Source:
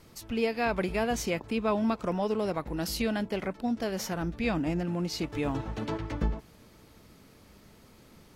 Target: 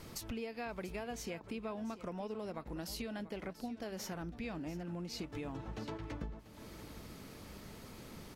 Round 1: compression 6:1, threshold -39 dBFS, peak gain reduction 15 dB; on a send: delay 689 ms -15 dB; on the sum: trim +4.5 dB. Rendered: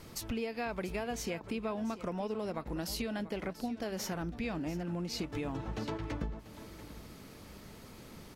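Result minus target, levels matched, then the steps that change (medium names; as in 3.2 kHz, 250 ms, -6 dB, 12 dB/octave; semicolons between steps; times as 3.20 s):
compression: peak gain reduction -5.5 dB
change: compression 6:1, threshold -45.5 dBFS, peak gain reduction 20.5 dB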